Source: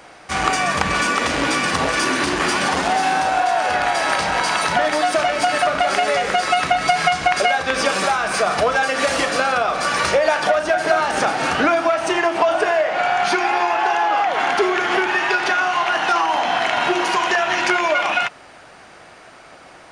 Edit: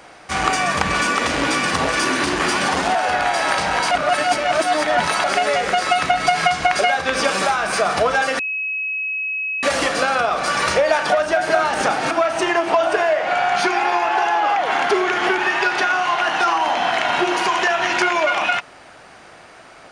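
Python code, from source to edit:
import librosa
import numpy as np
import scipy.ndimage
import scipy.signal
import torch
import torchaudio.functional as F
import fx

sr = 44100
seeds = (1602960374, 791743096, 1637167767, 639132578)

y = fx.edit(x, sr, fx.cut(start_s=2.95, length_s=0.61),
    fx.reverse_span(start_s=4.52, length_s=1.33),
    fx.insert_tone(at_s=9.0, length_s=1.24, hz=2560.0, db=-21.0),
    fx.cut(start_s=11.48, length_s=0.31), tone=tone)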